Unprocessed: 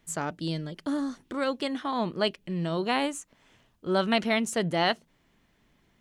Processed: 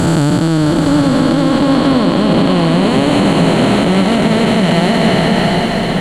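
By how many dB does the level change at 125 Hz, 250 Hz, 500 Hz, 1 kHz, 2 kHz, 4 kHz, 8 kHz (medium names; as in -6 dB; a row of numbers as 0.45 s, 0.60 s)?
+23.0 dB, +21.0 dB, +16.0 dB, +15.0 dB, +14.0 dB, +15.0 dB, +12.0 dB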